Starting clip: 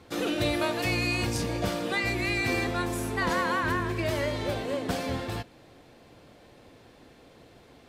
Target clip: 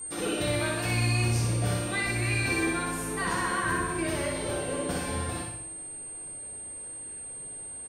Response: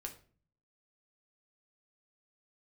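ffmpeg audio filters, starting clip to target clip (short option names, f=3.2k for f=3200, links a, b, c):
-filter_complex "[0:a]aeval=exprs='val(0)+0.0178*sin(2*PI*8700*n/s)':c=same,aecho=1:1:61|122|183|244|305|366|427:0.668|0.348|0.181|0.094|0.0489|0.0254|0.0132[a];[1:a]atrim=start_sample=2205,asetrate=43218,aresample=44100[b];[a][b]afir=irnorm=-1:irlink=0"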